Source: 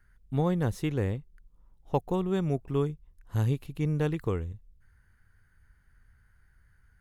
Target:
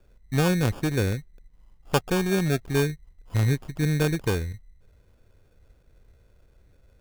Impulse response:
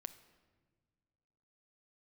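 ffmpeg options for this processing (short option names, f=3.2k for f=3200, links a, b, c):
-af "acrusher=samples=22:mix=1:aa=0.000001,volume=4.5dB"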